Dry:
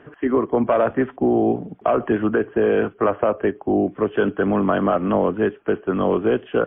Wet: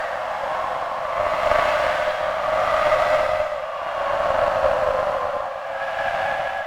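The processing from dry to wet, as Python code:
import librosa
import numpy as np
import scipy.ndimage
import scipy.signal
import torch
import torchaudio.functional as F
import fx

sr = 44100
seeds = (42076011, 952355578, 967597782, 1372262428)

p1 = fx.lower_of_two(x, sr, delay_ms=1.8)
p2 = fx.rider(p1, sr, range_db=10, speed_s=0.5)
p3 = p1 + F.gain(torch.from_numpy(p2), 2.0).numpy()
p4 = fx.paulstretch(p3, sr, seeds[0], factor=6.3, window_s=0.25, from_s=4.46)
p5 = fx.brickwall_highpass(p4, sr, low_hz=520.0)
p6 = fx.cheby_harmonics(p5, sr, harmonics=(2, 3, 6), levels_db=(-16, -21, -32), full_scale_db=-2.5)
y = F.gain(torch.from_numpy(p6), -1.5).numpy()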